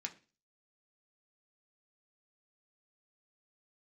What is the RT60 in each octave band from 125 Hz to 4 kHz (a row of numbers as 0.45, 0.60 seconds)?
0.45, 0.40, 0.35, 0.30, 0.35, 0.40 seconds